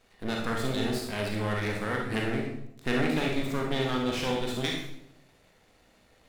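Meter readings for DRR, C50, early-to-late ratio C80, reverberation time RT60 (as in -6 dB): -0.5 dB, 2.5 dB, 6.5 dB, 0.75 s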